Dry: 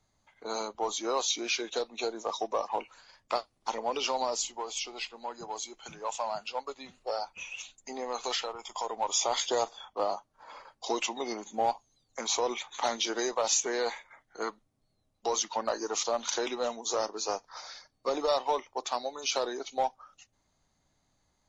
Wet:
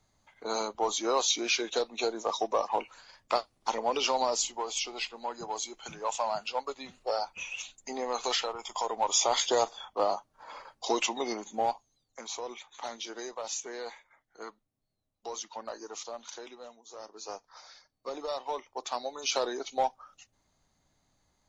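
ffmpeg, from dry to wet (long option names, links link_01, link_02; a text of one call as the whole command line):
ffmpeg -i in.wav -af "volume=22.5dB,afade=type=out:start_time=11.16:duration=1.12:silence=0.266073,afade=type=out:start_time=15.83:duration=1.06:silence=0.316228,afade=type=in:start_time=16.89:duration=0.47:silence=0.266073,afade=type=in:start_time=18.37:duration=1.04:silence=0.375837" out.wav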